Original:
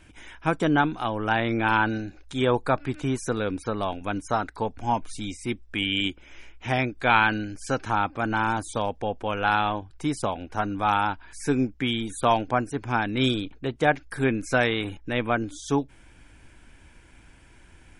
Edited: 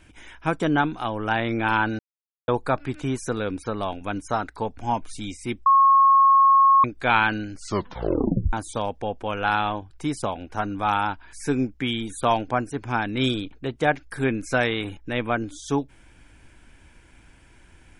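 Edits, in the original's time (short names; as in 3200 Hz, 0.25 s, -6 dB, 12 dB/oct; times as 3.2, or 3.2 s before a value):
1.99–2.48 mute
5.66–6.84 bleep 1090 Hz -12 dBFS
7.52 tape stop 1.01 s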